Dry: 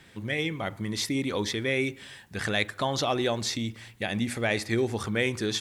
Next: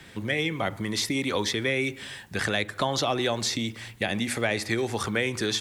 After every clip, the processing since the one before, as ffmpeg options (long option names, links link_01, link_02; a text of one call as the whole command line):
ffmpeg -i in.wav -filter_complex "[0:a]acrossover=split=260|570[link_01][link_02][link_03];[link_01]acompressor=threshold=-40dB:ratio=4[link_04];[link_02]acompressor=threshold=-38dB:ratio=4[link_05];[link_03]acompressor=threshold=-31dB:ratio=4[link_06];[link_04][link_05][link_06]amix=inputs=3:normalize=0,volume=6dB" out.wav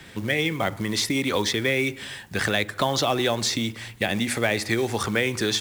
ffmpeg -i in.wav -af "acrusher=bits=5:mode=log:mix=0:aa=0.000001,volume=3dB" out.wav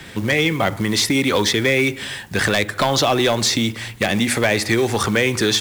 ffmpeg -i in.wav -af "aeval=exprs='0.473*sin(PI/2*2.24*val(0)/0.473)':channel_layout=same,volume=-3.5dB" out.wav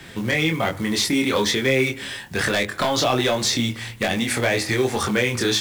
ffmpeg -i in.wav -af "flanger=delay=22.5:depth=3:speed=1.2" out.wav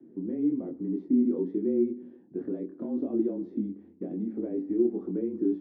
ffmpeg -i in.wav -af "afreqshift=-27,asuperpass=centerf=290:order=4:qfactor=2.2" out.wav